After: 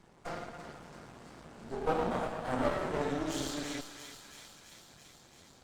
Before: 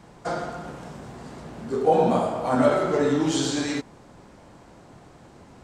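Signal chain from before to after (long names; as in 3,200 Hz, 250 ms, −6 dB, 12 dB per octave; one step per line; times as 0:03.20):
feedback echo with a high-pass in the loop 336 ms, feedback 75%, high-pass 930 Hz, level −7 dB
half-wave rectification
level −7.5 dB
Opus 48 kbit/s 48,000 Hz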